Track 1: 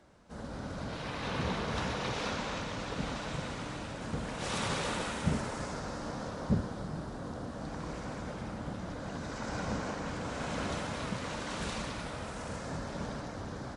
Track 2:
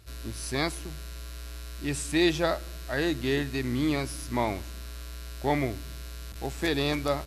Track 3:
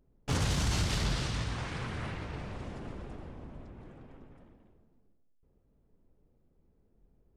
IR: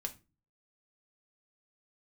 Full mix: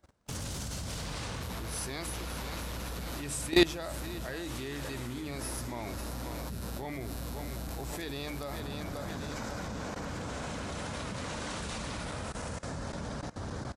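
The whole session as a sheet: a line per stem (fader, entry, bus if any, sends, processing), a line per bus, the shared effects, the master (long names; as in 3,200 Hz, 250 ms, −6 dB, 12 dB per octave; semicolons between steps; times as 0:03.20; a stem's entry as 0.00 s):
+2.5 dB, 0.00 s, no send, echo send −20.5 dB, brickwall limiter −29 dBFS, peak gain reduction 11 dB
+2.0 dB, 1.35 s, no send, echo send −13.5 dB, mains-hum notches 50/100/150/200/250/300 Hz
−6.0 dB, 0.00 s, no send, no echo send, high-shelf EQ 5,100 Hz +9.5 dB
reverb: not used
echo: repeating echo 539 ms, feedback 55%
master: parametric band 73 Hz +5 dB 1.3 octaves; output level in coarse steps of 19 dB; high-shelf EQ 7,800 Hz +9 dB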